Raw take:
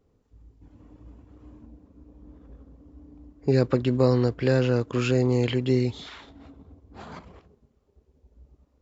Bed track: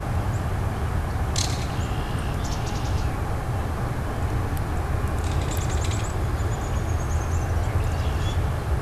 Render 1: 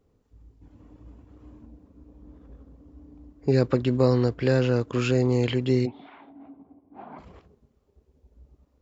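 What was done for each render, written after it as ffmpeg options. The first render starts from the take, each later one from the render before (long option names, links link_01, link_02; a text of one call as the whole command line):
ffmpeg -i in.wav -filter_complex "[0:a]asplit=3[link_01][link_02][link_03];[link_01]afade=type=out:start_time=5.85:duration=0.02[link_04];[link_02]highpass=240,equalizer=frequency=280:width_type=q:width=4:gain=6,equalizer=frequency=470:width_type=q:width=4:gain=-8,equalizer=frequency=750:width_type=q:width=4:gain=6,equalizer=frequency=1300:width_type=q:width=4:gain=-7,equalizer=frequency=1800:width_type=q:width=4:gain=-9,lowpass=frequency=2100:width=0.5412,lowpass=frequency=2100:width=1.3066,afade=type=in:start_time=5.85:duration=0.02,afade=type=out:start_time=7.18:duration=0.02[link_05];[link_03]afade=type=in:start_time=7.18:duration=0.02[link_06];[link_04][link_05][link_06]amix=inputs=3:normalize=0" out.wav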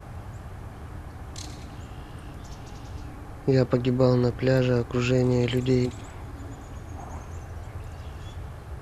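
ffmpeg -i in.wav -i bed.wav -filter_complex "[1:a]volume=-14dB[link_01];[0:a][link_01]amix=inputs=2:normalize=0" out.wav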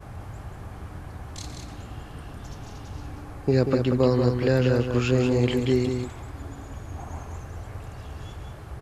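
ffmpeg -i in.wav -af "aecho=1:1:186:0.501" out.wav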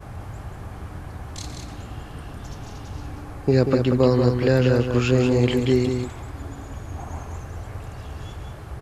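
ffmpeg -i in.wav -af "volume=3dB" out.wav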